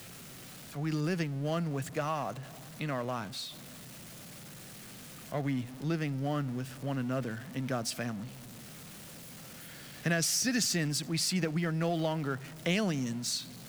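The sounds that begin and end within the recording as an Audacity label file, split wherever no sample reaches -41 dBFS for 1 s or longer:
5.320000	8.280000	sound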